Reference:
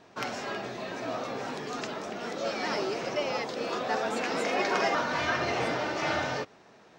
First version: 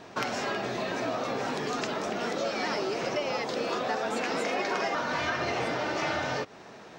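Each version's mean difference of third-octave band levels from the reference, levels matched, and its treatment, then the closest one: 2.5 dB: compressor 4:1, threshold -37 dBFS, peak gain reduction 12 dB; gain +8.5 dB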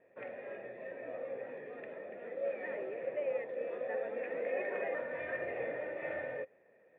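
11.5 dB: vocal tract filter e; gain +1.5 dB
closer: first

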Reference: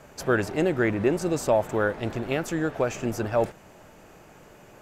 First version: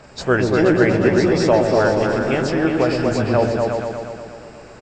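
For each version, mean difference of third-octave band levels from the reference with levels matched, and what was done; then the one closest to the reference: 6.5 dB: nonlinear frequency compression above 2600 Hz 1.5:1; high shelf 4900 Hz +6 dB; doubler 16 ms -12.5 dB; on a send: repeats that get brighter 0.119 s, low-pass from 400 Hz, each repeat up 2 oct, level 0 dB; on the sum: gain +5 dB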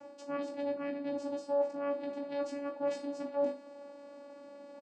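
9.5 dB: comb 1.5 ms, depth 38%; reverse; compressor 6:1, threshold -31 dBFS, peak gain reduction 15 dB; reverse; vocoder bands 8, saw 284 Hz; flutter echo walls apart 3.3 m, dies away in 0.29 s; gain -1 dB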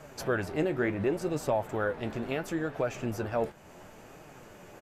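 2.5 dB: dynamic EQ 6900 Hz, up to -5 dB, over -51 dBFS, Q 1.3; in parallel at +3 dB: compressor, threshold -36 dBFS, peak gain reduction 17.5 dB; on the sum: flange 0.71 Hz, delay 6.2 ms, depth 8 ms, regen +54%; downsampling 32000 Hz; gain -3.5 dB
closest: third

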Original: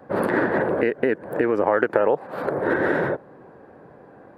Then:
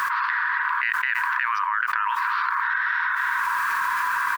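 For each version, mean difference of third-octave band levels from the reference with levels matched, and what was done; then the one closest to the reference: 20.0 dB: brick-wall FIR band-pass 930–6100 Hz; echo 0.291 s -24 dB; requantised 12-bit, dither none; fast leveller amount 100%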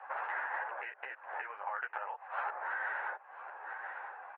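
12.5 dB: on a send: echo 0.996 s -22.5 dB; on the sum: compressor 12:1, threshold -33 dBFS, peak gain reduction 19.5 dB; Chebyshev band-pass 800–2800 Hz, order 3; ensemble effect; gain +8.5 dB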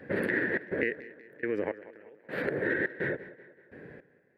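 6.5 dB: EQ curve 470 Hz 0 dB, 750 Hz -12 dB, 1200 Hz -13 dB, 1800 Hz +11 dB, 5900 Hz -4 dB; compressor 3:1, threshold -29 dBFS, peak gain reduction 11.5 dB; step gate "xxxx.xx...xx...." 105 bpm -24 dB; on a send: tape echo 0.191 s, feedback 53%, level -16.5 dB, low-pass 5000 Hz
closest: third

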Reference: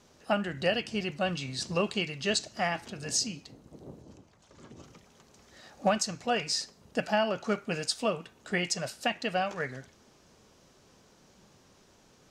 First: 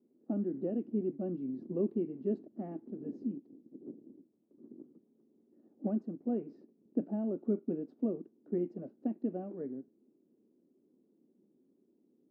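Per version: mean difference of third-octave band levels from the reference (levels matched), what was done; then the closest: 15.0 dB: sample leveller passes 1; in parallel at -8 dB: requantised 6-bit, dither none; on the sum: Butterworth band-pass 290 Hz, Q 2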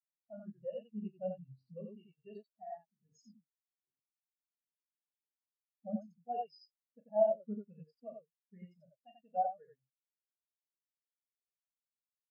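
20.0 dB: limiter -20 dBFS, peak gain reduction 6.5 dB; on a send: loudspeakers at several distances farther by 13 m -6 dB, 31 m -1 dB; on the sum: spectral expander 4:1; gain -3.5 dB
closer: first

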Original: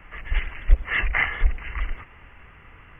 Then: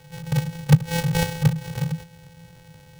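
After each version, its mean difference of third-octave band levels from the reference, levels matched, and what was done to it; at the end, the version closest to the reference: 12.0 dB: sample sorter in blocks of 128 samples; frequency shift -180 Hz; notch 1200 Hz, Q 12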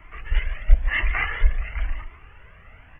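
2.0 dB: small resonant body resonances 630 Hz, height 7 dB; on a send: tapped delay 44/146 ms -17/-10.5 dB; on the sum: cascading flanger rising 0.97 Hz; gain +2.5 dB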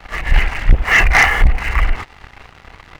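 6.0 dB: bell 780 Hz +8 dB 0.51 oct; sample leveller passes 3; on a send: reverse echo 32 ms -11.5 dB; on the sum: gain +2.5 dB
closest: second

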